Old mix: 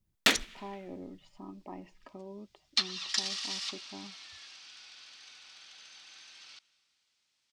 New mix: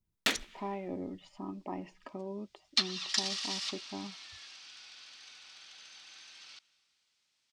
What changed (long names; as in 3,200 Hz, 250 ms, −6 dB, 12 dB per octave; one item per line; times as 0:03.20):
speech +5.0 dB
first sound −5.5 dB